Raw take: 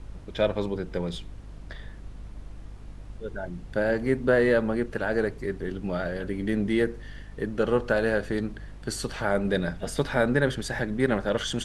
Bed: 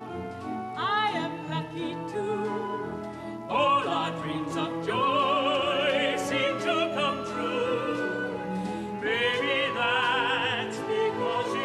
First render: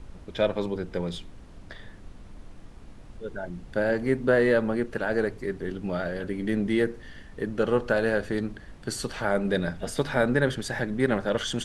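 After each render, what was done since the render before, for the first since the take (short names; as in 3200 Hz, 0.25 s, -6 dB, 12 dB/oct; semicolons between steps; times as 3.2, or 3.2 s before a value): de-hum 50 Hz, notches 3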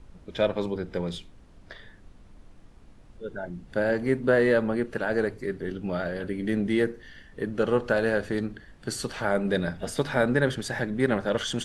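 noise print and reduce 6 dB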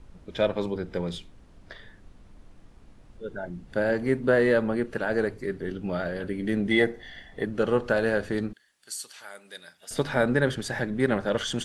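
6.71–7.45 small resonant body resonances 720/2000/3400 Hz, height 14 dB, ringing for 25 ms; 8.53–9.91 differentiator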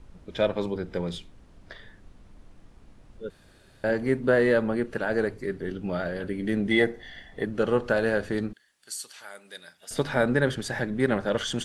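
3.3–3.84 room tone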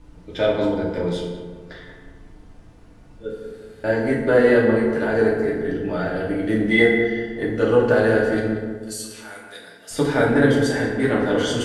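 on a send: darkening echo 0.185 s, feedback 54%, low-pass 1300 Hz, level -6.5 dB; on the sum: FDN reverb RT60 0.97 s, low-frequency decay 1×, high-frequency decay 0.65×, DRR -4 dB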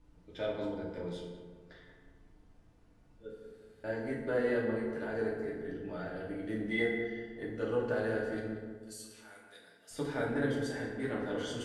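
gain -16 dB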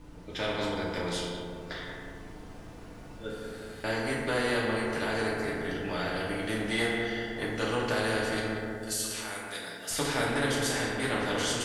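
AGC gain up to 5 dB; spectral compressor 2:1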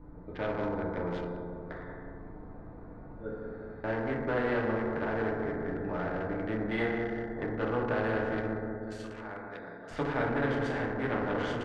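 Wiener smoothing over 15 samples; LPF 2000 Hz 12 dB/oct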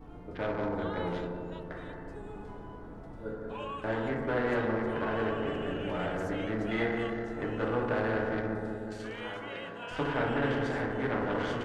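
add bed -17.5 dB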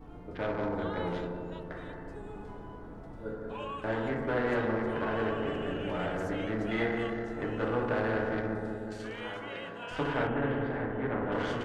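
10.27–11.32 air absorption 430 m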